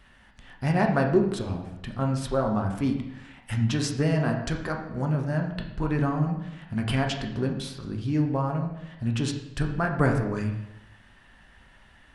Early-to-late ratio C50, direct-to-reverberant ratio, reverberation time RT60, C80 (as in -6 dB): 6.5 dB, 2.0 dB, 0.90 s, 9.0 dB